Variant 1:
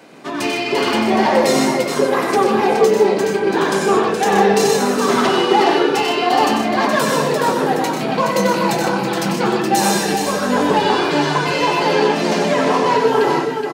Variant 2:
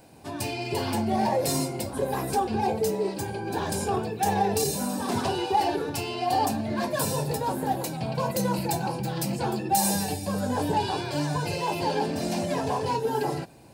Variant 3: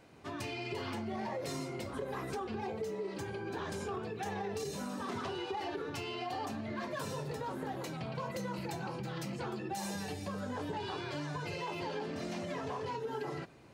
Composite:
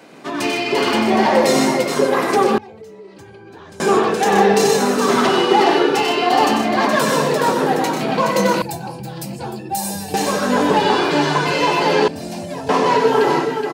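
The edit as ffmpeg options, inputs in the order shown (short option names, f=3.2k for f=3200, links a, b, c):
-filter_complex "[1:a]asplit=2[a][b];[0:a]asplit=4[c][d][e][f];[c]atrim=end=2.582[g];[2:a]atrim=start=2.578:end=3.802[h];[d]atrim=start=3.798:end=8.622[i];[a]atrim=start=8.618:end=10.142[j];[e]atrim=start=10.138:end=12.082[k];[b]atrim=start=12.078:end=12.692[l];[f]atrim=start=12.688[m];[g][h]acrossfade=d=0.004:c1=hsin:c2=hsin[n];[n][i]acrossfade=d=0.004:c1=hsin:c2=hsin[o];[o][j]acrossfade=d=0.004:c1=hsin:c2=hsin[p];[p][k]acrossfade=d=0.004:c1=hsin:c2=hsin[q];[q][l]acrossfade=d=0.004:c1=hsin:c2=hsin[r];[r][m]acrossfade=d=0.004:c1=hsin:c2=hsin"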